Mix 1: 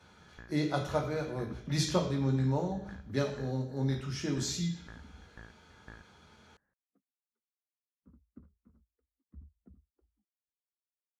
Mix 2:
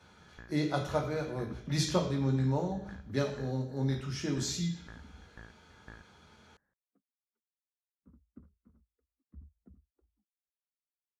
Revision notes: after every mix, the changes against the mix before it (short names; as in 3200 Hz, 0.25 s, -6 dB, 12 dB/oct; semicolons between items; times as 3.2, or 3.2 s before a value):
none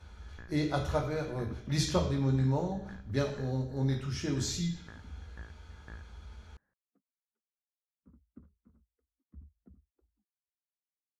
speech: remove HPF 120 Hz 24 dB/oct